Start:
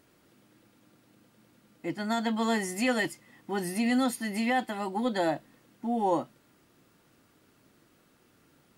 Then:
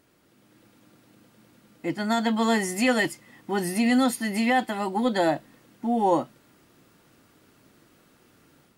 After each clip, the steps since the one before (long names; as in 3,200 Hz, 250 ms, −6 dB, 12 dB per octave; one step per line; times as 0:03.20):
automatic gain control gain up to 5 dB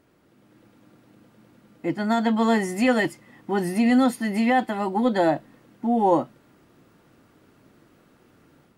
high-shelf EQ 2,500 Hz −9.5 dB
level +3 dB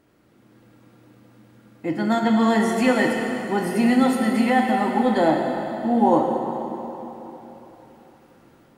dense smooth reverb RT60 3.6 s, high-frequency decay 0.85×, DRR 1 dB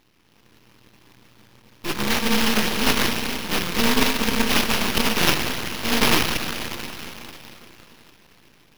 samples in bit-reversed order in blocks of 64 samples
sample-rate reduction 8,200 Hz, jitter 20%
half-wave rectification
level +2.5 dB